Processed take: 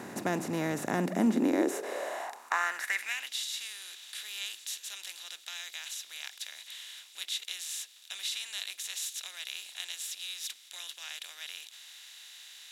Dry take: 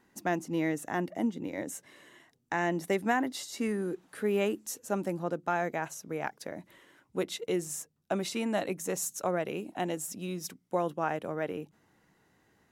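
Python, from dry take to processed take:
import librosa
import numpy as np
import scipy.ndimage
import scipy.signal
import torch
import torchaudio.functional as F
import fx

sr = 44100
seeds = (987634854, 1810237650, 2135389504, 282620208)

y = fx.bin_compress(x, sr, power=0.4)
y = fx.filter_sweep_highpass(y, sr, from_hz=110.0, to_hz=3400.0, start_s=0.81, end_s=3.36, q=4.0)
y = y * librosa.db_to_amplitude(-7.0)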